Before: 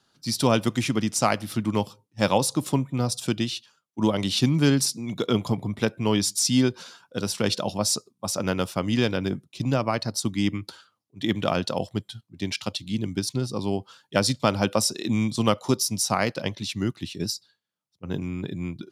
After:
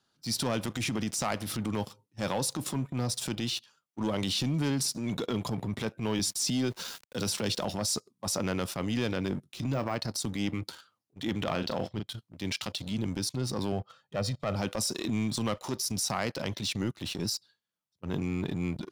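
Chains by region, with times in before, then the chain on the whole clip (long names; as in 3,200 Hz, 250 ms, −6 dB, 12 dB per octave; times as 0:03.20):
0:06.19–0:07.65: centre clipping without the shift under −47 dBFS + multiband upward and downward compressor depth 40%
0:09.35–0:09.96: de-essing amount 100% + double-tracking delay 21 ms −14 dB
0:11.44–0:12.08: low-pass filter 5,200 Hz 24 dB per octave + double-tracking delay 37 ms −11 dB
0:13.72–0:14.56: low-pass filter 1,500 Hz 6 dB per octave + comb filter 1.6 ms, depth 69%
whole clip: leveller curve on the samples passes 2; downward compressor 6 to 1, threshold −23 dBFS; transient designer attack −8 dB, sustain +4 dB; level −3.5 dB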